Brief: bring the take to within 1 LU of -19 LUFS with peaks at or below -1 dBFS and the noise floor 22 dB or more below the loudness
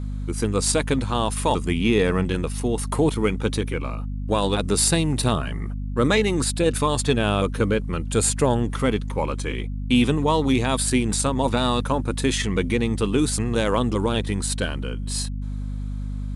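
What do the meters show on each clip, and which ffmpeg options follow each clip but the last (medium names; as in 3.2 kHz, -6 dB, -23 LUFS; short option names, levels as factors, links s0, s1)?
hum 50 Hz; highest harmonic 250 Hz; hum level -26 dBFS; loudness -23.0 LUFS; peak level -6.5 dBFS; loudness target -19.0 LUFS
-> -af "bandreject=f=50:t=h:w=4,bandreject=f=100:t=h:w=4,bandreject=f=150:t=h:w=4,bandreject=f=200:t=h:w=4,bandreject=f=250:t=h:w=4"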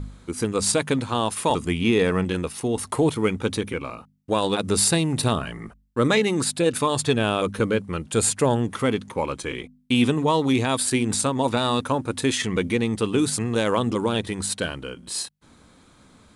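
hum not found; loudness -23.0 LUFS; peak level -7.5 dBFS; loudness target -19.0 LUFS
-> -af "volume=1.58"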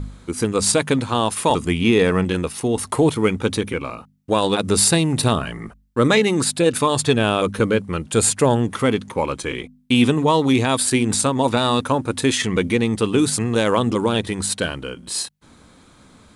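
loudness -19.5 LUFS; peak level -3.5 dBFS; noise floor -51 dBFS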